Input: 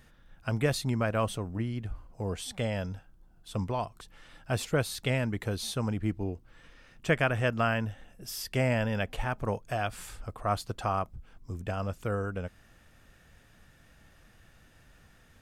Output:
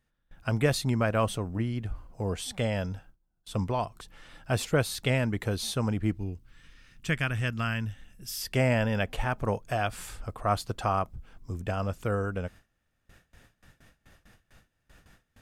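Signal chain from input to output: gate with hold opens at -47 dBFS; 6.17–8.42 s: peaking EQ 620 Hz -14 dB 1.9 oct; trim +2.5 dB

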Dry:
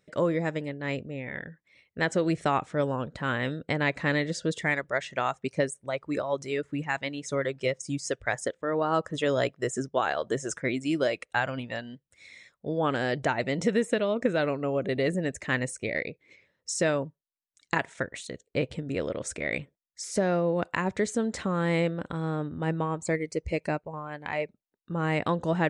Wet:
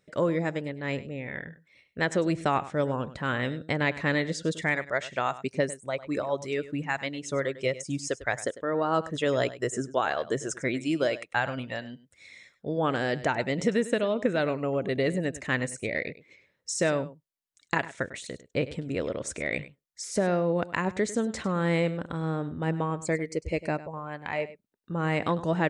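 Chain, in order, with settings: delay 100 ms -16 dB

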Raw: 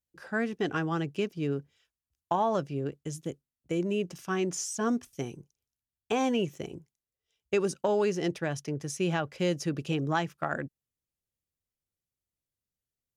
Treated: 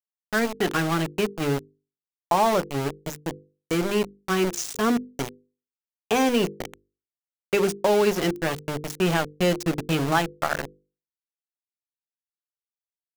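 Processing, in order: small samples zeroed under -31 dBFS; hum notches 50/100/150/200/250/300/350/400/450/500 Hz; trim +7 dB

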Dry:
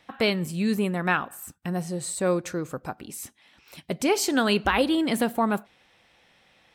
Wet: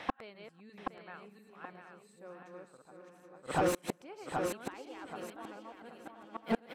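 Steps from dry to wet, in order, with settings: backward echo that repeats 347 ms, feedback 49%, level -1 dB; inverted gate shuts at -25 dBFS, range -42 dB; on a send: feedback delay 776 ms, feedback 23%, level -8 dB; on the sum: overdrive pedal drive 20 dB, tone 1.1 kHz, clips at -24 dBFS; trim +6.5 dB

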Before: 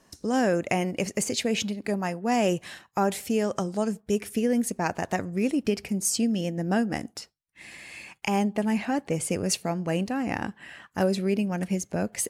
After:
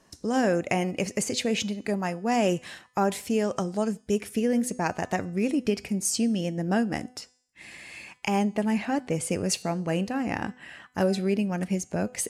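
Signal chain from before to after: Bessel low-pass 12 kHz, order 2; de-hum 250.9 Hz, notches 39

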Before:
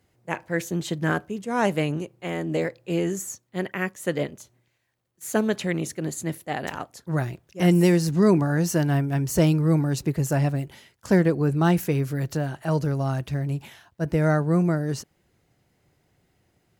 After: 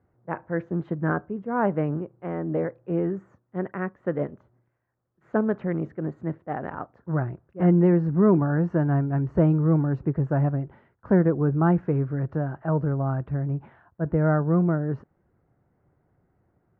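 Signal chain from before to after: Chebyshev low-pass 1.4 kHz, order 3

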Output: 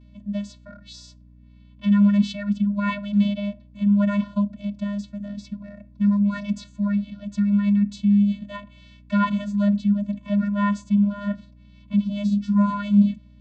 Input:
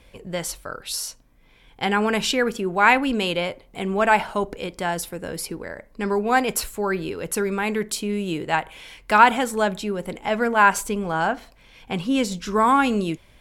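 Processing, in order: vocoder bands 16, square 203 Hz; ten-band graphic EQ 250 Hz +9 dB, 500 Hz -4 dB, 4 kHz +9 dB; hum 60 Hz, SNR 27 dB; trim -4 dB

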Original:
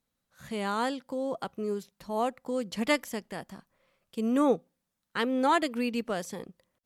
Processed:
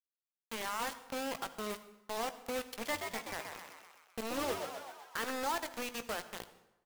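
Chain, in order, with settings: block-companded coder 5-bit; bass shelf 280 Hz -5 dB; compression 2.5:1, threshold -39 dBFS, peak gain reduction 12.5 dB; overdrive pedal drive 18 dB, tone 2 kHz, clips at -11.5 dBFS; bit crusher 5-bit; doubling 18 ms -12.5 dB; 2.63–5.31 s: frequency-shifting echo 127 ms, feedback 60%, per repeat +89 Hz, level -5.5 dB; reverberation RT60 1.0 s, pre-delay 53 ms, DRR 13.5 dB; trim -8 dB

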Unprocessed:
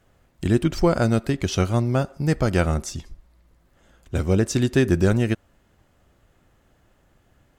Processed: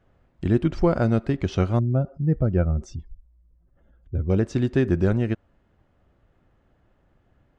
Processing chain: 1.79–4.30 s: spectral contrast enhancement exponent 1.7; tape spacing loss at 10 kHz 24 dB; gain riding 2 s

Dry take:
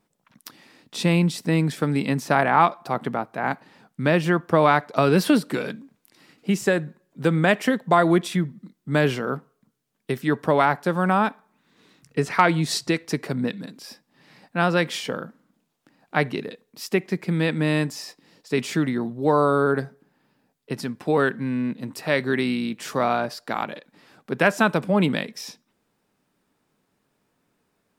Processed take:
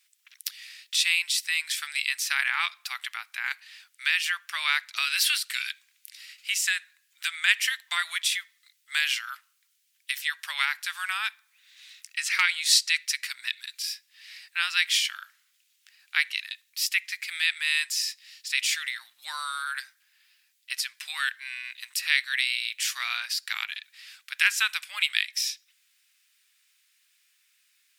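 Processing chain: inverse Chebyshev high-pass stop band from 470 Hz, stop band 70 dB; in parallel at 0 dB: compression, threshold -43 dBFS, peak gain reduction 19.5 dB; on the sum: trim +6 dB

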